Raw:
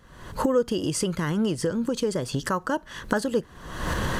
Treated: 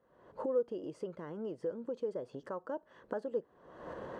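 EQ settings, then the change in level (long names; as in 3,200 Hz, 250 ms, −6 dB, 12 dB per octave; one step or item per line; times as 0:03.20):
resonant band-pass 530 Hz, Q 1.7
−8.5 dB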